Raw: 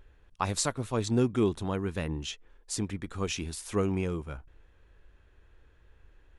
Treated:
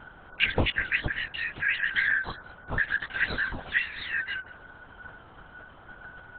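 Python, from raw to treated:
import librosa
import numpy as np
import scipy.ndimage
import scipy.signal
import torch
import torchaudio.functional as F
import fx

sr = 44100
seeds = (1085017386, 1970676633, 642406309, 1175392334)

p1 = fx.band_shuffle(x, sr, order='4123')
p2 = fx.low_shelf(p1, sr, hz=480.0, db=12.0)
p3 = fx.quant_dither(p2, sr, seeds[0], bits=6, dither='none', at=(2.83, 3.48))
p4 = fx.env_flanger(p3, sr, rest_ms=3.2, full_db=-25.0)
p5 = p4 + fx.echo_single(p4, sr, ms=190, db=-23.0, dry=0)
p6 = fx.dmg_buzz(p5, sr, base_hz=50.0, harmonics=27, level_db=-59.0, tilt_db=0, odd_only=False)
p7 = fx.lpc_vocoder(p6, sr, seeds[1], excitation='whisper', order=10)
y = p7 * librosa.db_to_amplitude(7.5)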